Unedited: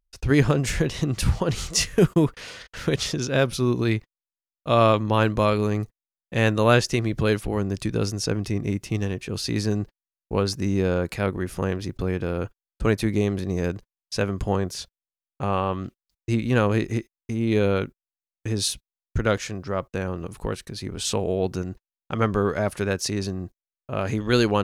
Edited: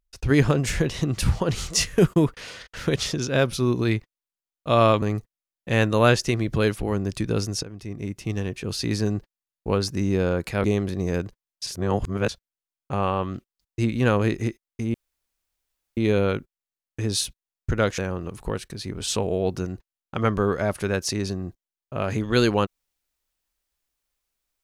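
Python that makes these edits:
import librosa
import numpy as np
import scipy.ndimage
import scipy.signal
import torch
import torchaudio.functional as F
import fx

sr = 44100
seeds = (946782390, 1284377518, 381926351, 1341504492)

y = fx.edit(x, sr, fx.cut(start_s=5.02, length_s=0.65),
    fx.fade_in_from(start_s=8.28, length_s=0.91, floor_db=-17.0),
    fx.cut(start_s=11.29, length_s=1.85),
    fx.reverse_span(start_s=14.17, length_s=0.62),
    fx.insert_room_tone(at_s=17.44, length_s=1.03),
    fx.cut(start_s=19.45, length_s=0.5), tone=tone)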